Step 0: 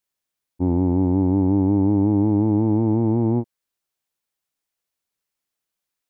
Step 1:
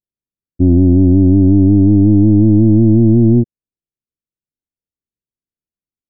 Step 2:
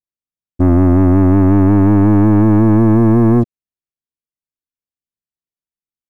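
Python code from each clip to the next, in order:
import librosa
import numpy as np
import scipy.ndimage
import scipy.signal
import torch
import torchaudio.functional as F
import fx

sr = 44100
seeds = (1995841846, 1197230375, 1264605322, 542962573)

y1 = fx.leveller(x, sr, passes=3)
y1 = scipy.ndimage.gaussian_filter1d(y1, 21.0, mode='constant')
y1 = y1 * 10.0 ** (7.5 / 20.0)
y2 = fx.leveller(y1, sr, passes=2)
y2 = y2 * 10.0 ** (-3.0 / 20.0)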